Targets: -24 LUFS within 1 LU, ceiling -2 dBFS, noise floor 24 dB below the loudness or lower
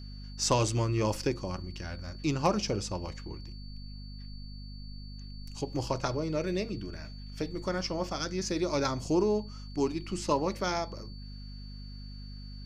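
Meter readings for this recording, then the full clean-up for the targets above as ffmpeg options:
hum 50 Hz; harmonics up to 250 Hz; hum level -41 dBFS; steady tone 4500 Hz; tone level -52 dBFS; loudness -32.0 LUFS; peak -14.5 dBFS; loudness target -24.0 LUFS
-> -af "bandreject=f=50:t=h:w=6,bandreject=f=100:t=h:w=6,bandreject=f=150:t=h:w=6,bandreject=f=200:t=h:w=6,bandreject=f=250:t=h:w=6"
-af "bandreject=f=4.5k:w=30"
-af "volume=8dB"

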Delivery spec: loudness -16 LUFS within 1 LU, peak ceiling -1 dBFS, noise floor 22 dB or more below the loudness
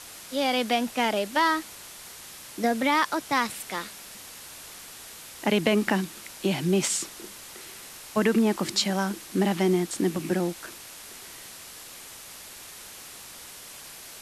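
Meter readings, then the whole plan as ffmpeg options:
noise floor -44 dBFS; noise floor target -48 dBFS; loudness -26.0 LUFS; peak -8.5 dBFS; loudness target -16.0 LUFS
-> -af "afftdn=nr=6:nf=-44"
-af "volume=10dB,alimiter=limit=-1dB:level=0:latency=1"

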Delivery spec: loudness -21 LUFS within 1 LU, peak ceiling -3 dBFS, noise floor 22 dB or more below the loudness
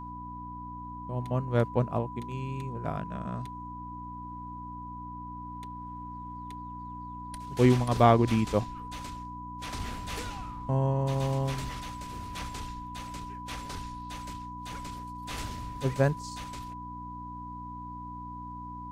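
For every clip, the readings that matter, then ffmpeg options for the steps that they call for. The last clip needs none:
hum 60 Hz; harmonics up to 300 Hz; hum level -41 dBFS; steady tone 990 Hz; tone level -40 dBFS; loudness -32.5 LUFS; peak -8.5 dBFS; loudness target -21.0 LUFS
-> -af "bandreject=f=60:t=h:w=4,bandreject=f=120:t=h:w=4,bandreject=f=180:t=h:w=4,bandreject=f=240:t=h:w=4,bandreject=f=300:t=h:w=4"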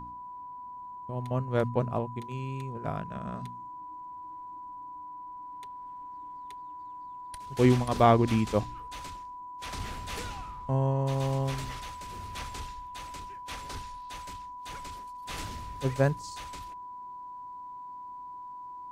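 hum none; steady tone 990 Hz; tone level -40 dBFS
-> -af "bandreject=f=990:w=30"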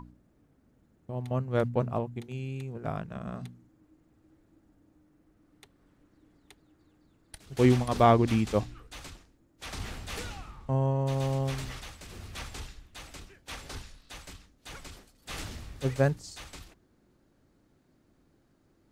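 steady tone none; loudness -30.5 LUFS; peak -9.5 dBFS; loudness target -21.0 LUFS
-> -af "volume=9.5dB,alimiter=limit=-3dB:level=0:latency=1"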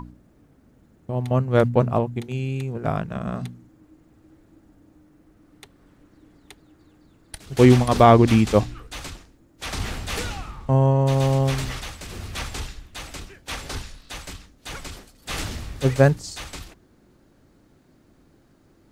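loudness -21.5 LUFS; peak -3.0 dBFS; noise floor -58 dBFS

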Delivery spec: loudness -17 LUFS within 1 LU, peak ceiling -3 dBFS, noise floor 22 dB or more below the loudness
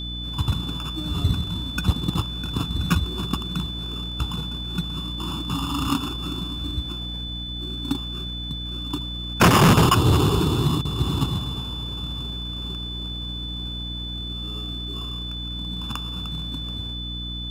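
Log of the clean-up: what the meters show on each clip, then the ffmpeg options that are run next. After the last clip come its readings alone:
hum 60 Hz; harmonics up to 300 Hz; hum level -30 dBFS; steady tone 3500 Hz; tone level -32 dBFS; loudness -25.0 LUFS; peak -9.5 dBFS; loudness target -17.0 LUFS
-> -af "bandreject=f=60:t=h:w=4,bandreject=f=120:t=h:w=4,bandreject=f=180:t=h:w=4,bandreject=f=240:t=h:w=4,bandreject=f=300:t=h:w=4"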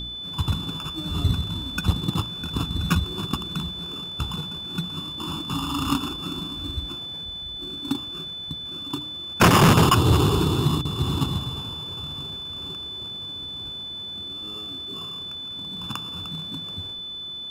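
hum none; steady tone 3500 Hz; tone level -32 dBFS
-> -af "bandreject=f=3.5k:w=30"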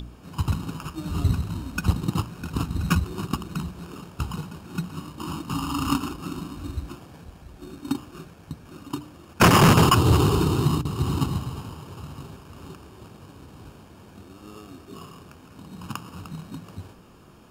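steady tone none; loudness -24.5 LUFS; peak -8.5 dBFS; loudness target -17.0 LUFS
-> -af "volume=7.5dB,alimiter=limit=-3dB:level=0:latency=1"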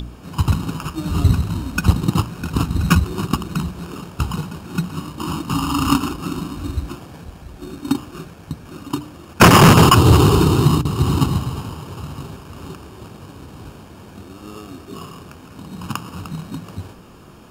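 loudness -17.5 LUFS; peak -3.0 dBFS; noise floor -41 dBFS

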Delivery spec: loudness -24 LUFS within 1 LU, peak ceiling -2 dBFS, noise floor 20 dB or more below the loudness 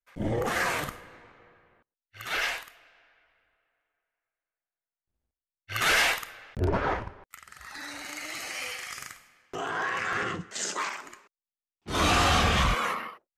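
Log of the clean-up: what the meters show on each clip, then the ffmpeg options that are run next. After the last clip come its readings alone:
loudness -28.0 LUFS; peak -16.5 dBFS; loudness target -24.0 LUFS
-> -af "volume=4dB"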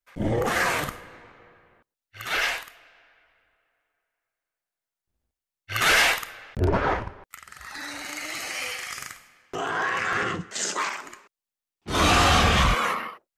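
loudness -24.0 LUFS; peak -12.5 dBFS; noise floor -90 dBFS

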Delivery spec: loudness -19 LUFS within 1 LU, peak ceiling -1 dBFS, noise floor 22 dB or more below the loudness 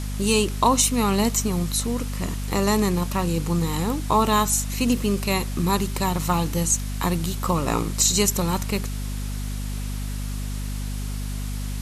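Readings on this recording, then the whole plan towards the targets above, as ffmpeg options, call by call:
hum 50 Hz; harmonics up to 250 Hz; hum level -26 dBFS; noise floor -29 dBFS; noise floor target -46 dBFS; loudness -23.5 LUFS; peak -6.0 dBFS; loudness target -19.0 LUFS
-> -af "bandreject=f=50:t=h:w=4,bandreject=f=100:t=h:w=4,bandreject=f=150:t=h:w=4,bandreject=f=200:t=h:w=4,bandreject=f=250:t=h:w=4"
-af "afftdn=nr=17:nf=-29"
-af "volume=4.5dB"

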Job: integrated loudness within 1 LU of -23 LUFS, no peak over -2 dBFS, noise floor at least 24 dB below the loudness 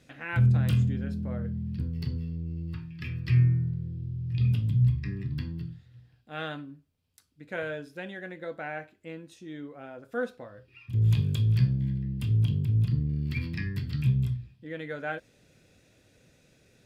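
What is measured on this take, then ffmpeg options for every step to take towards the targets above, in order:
loudness -29.0 LUFS; peak -13.0 dBFS; loudness target -23.0 LUFS
-> -af "volume=6dB"

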